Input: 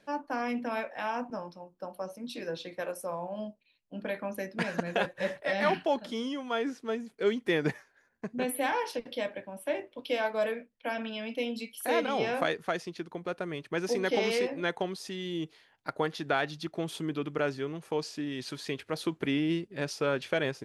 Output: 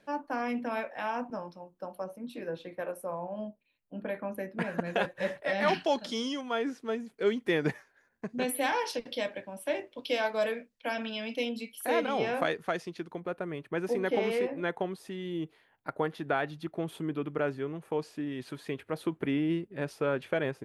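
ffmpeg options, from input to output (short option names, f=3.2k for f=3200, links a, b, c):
-af "asetnsamples=n=441:p=0,asendcmd='2.04 equalizer g -15;4.84 equalizer g -3;5.68 equalizer g 9;6.41 equalizer g -2.5;8.29 equalizer g 5.5;11.49 equalizer g -4;13.2 equalizer g -14',equalizer=f=5.4k:t=o:w=1.5:g=-3.5"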